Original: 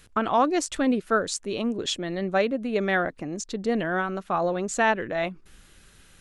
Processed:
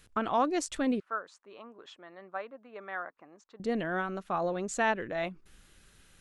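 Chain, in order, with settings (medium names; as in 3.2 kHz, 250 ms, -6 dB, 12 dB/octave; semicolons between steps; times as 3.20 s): 1.00–3.60 s: band-pass filter 1.1 kHz, Q 2.4; trim -6 dB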